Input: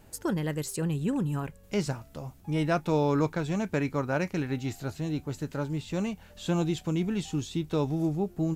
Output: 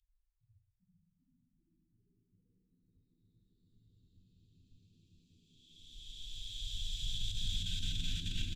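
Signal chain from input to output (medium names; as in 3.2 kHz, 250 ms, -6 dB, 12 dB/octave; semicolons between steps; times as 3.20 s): local Wiener filter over 15 samples; dynamic bell 110 Hz, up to +4 dB, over -44 dBFS, Q 1.7; gate -44 dBFS, range -32 dB; Paulstretch 44×, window 0.10 s, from 6.29 s; inverse Chebyshev band-stop 210–700 Hz, stop band 80 dB; tilt EQ -2.5 dB/octave; compressor with a negative ratio -47 dBFS, ratio -0.5; on a send: frequency-shifting echo 392 ms, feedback 56%, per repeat +74 Hz, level -10 dB; on the sum: spectral noise reduction 18 dB; delay 432 ms -10 dB; trim +12.5 dB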